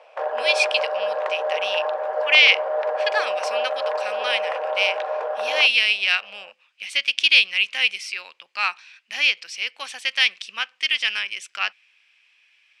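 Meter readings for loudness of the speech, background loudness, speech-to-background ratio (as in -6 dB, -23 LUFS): -20.5 LUFS, -26.0 LUFS, 5.5 dB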